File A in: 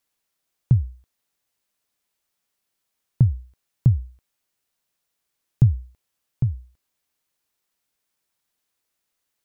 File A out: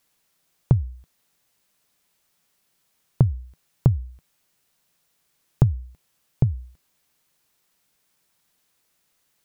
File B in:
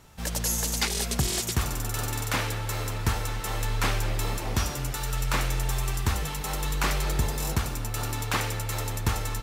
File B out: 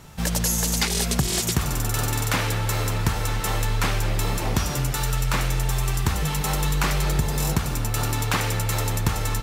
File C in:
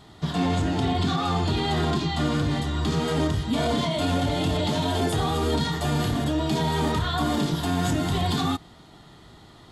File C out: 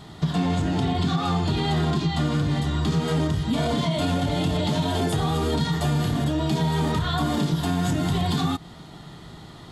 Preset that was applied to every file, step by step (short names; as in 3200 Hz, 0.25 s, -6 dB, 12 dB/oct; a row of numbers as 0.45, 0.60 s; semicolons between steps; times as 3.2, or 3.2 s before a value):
bell 160 Hz +6.5 dB 0.52 oct; compressor 3:1, threshold -27 dBFS; match loudness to -24 LUFS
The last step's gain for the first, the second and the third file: +8.5, +7.0, +5.0 dB